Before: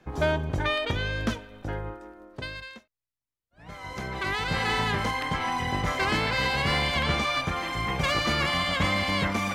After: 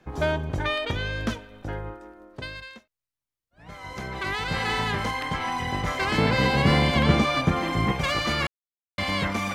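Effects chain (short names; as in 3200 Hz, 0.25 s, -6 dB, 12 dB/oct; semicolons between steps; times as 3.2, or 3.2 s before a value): 6.18–7.92 bell 220 Hz +11.5 dB 2.9 oct; 8.47–8.98 mute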